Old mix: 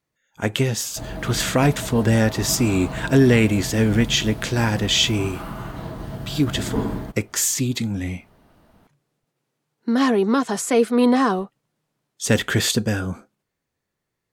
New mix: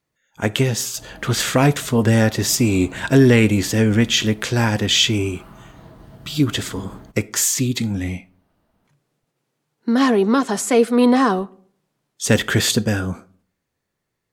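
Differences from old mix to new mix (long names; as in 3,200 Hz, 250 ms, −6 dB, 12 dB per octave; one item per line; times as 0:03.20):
background −11.0 dB
reverb: on, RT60 0.55 s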